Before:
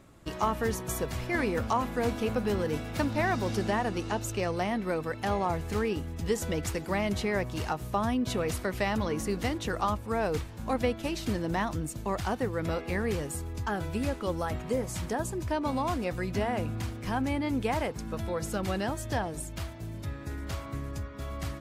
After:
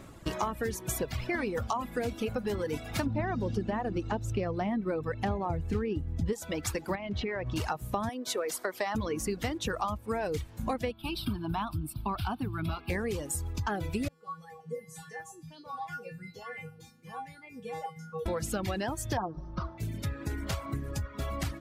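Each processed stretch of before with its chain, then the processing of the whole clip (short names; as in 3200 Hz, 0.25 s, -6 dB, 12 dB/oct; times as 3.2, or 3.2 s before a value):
3.06–6.33 LPF 2700 Hz 6 dB/oct + low shelf 400 Hz +9.5 dB
6.95–7.56 LPF 3500 Hz + compressor 4:1, threshold -32 dBFS
8.09–8.95 HPF 400 Hz + bell 2600 Hz -8 dB 0.65 oct
10.91–12.9 bell 6800 Hz -6.5 dB 0.38 oct + fixed phaser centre 1900 Hz, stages 6
14.08–18.26 HPF 77 Hz + resonator 160 Hz, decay 0.55 s, harmonics odd, mix 100% + LFO bell 1.4 Hz 210–2000 Hz +11 dB
19.17–19.78 brick-wall FIR low-pass 6100 Hz + resonant high shelf 1600 Hz -11.5 dB, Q 3 + comb 5.6 ms, depth 61%
whole clip: reverb removal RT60 1.7 s; compressor 5:1, threshold -37 dBFS; gain +7.5 dB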